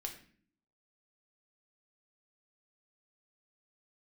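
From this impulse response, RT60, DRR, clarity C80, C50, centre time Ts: 0.50 s, 1.5 dB, 13.0 dB, 9.0 dB, 16 ms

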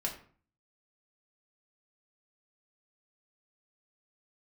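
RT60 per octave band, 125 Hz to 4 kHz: 0.65, 0.55, 0.45, 0.45, 0.40, 0.30 s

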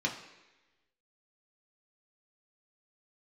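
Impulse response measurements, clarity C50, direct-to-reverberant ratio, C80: 8.5 dB, -1.5 dB, 11.0 dB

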